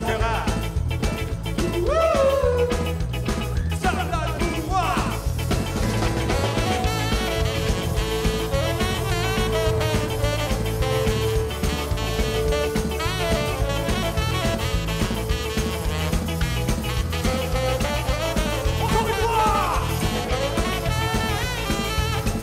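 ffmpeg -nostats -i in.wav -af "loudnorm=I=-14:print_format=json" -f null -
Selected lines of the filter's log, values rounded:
"input_i" : "-23.3",
"input_tp" : "-11.0",
"input_lra" : "1.7",
"input_thresh" : "-33.3",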